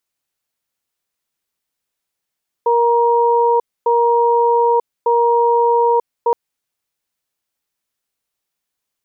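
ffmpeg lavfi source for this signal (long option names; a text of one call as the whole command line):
ffmpeg -f lavfi -i "aevalsrc='0.211*(sin(2*PI*470*t)+sin(2*PI*944*t))*clip(min(mod(t,1.2),0.94-mod(t,1.2))/0.005,0,1)':duration=3.67:sample_rate=44100" out.wav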